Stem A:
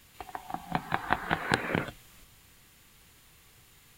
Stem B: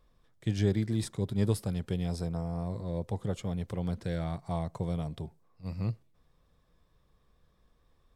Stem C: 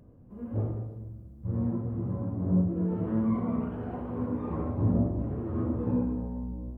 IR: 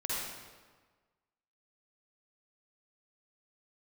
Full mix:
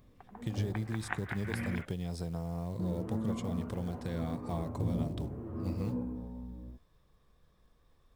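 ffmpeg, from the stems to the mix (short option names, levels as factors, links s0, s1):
-filter_complex "[0:a]afwtdn=0.00891,equalizer=f=2100:w=1.1:g=12.5,volume=0.178[s0];[1:a]acompressor=threshold=0.0224:ratio=6,acrusher=bits=7:mode=log:mix=0:aa=0.000001,volume=1.06,asplit=2[s1][s2];[2:a]highshelf=f=7900:g=11.5,volume=0.376,asplit=3[s3][s4][s5];[s3]atrim=end=1.82,asetpts=PTS-STARTPTS,afade=t=out:st=1.816:d=0.004:c=hsin[s6];[s4]atrim=start=1.82:end=2.79,asetpts=PTS-STARTPTS,volume=0[s7];[s5]atrim=start=2.79,asetpts=PTS-STARTPTS,afade=t=in:d=0.004:c=hsin[s8];[s6][s7][s8]concat=n=3:v=0:a=1[s9];[s2]apad=whole_len=175255[s10];[s0][s10]sidechaincompress=threshold=0.00891:ratio=8:attack=38:release=105[s11];[s11][s1][s9]amix=inputs=3:normalize=0"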